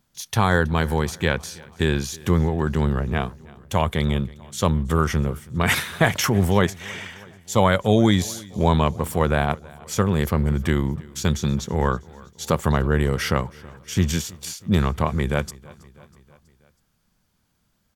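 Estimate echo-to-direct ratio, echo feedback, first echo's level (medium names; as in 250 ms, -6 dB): -21.0 dB, 60%, -23.0 dB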